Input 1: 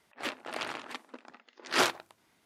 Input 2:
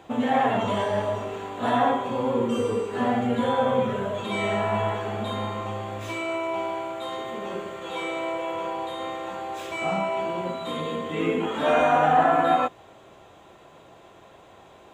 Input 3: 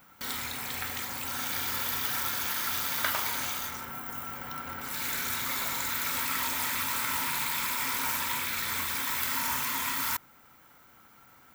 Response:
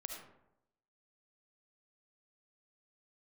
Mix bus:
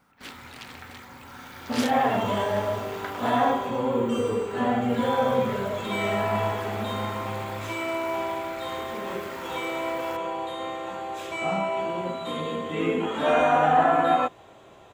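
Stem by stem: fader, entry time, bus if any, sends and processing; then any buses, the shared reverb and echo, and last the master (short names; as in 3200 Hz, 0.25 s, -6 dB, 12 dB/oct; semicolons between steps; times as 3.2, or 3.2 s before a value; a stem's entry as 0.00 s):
-2.5 dB, 0.00 s, no send, bell 680 Hz -14.5 dB 2.3 oct
-0.5 dB, 1.60 s, no send, dry
-2.5 dB, 0.00 s, no send, LPF 1200 Hz 6 dB/oct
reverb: off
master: dry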